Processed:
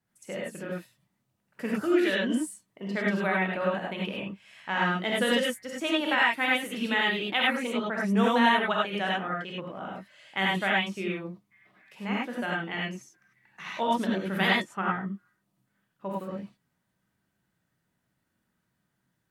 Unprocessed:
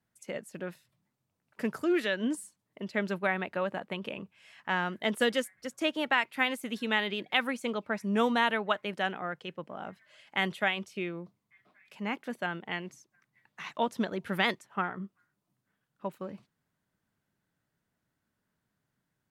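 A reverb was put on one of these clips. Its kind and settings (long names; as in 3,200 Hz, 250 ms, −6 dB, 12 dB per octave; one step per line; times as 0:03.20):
reverb whose tail is shaped and stops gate 120 ms rising, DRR −4 dB
level −1.5 dB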